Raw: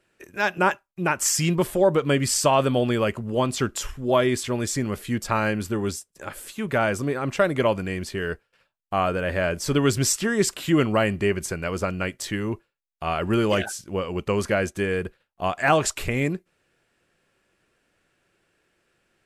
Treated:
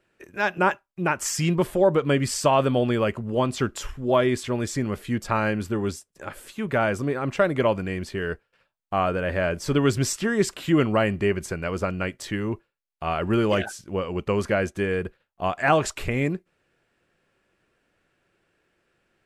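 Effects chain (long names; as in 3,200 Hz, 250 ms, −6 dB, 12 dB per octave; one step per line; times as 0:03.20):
high-shelf EQ 4,500 Hz −8 dB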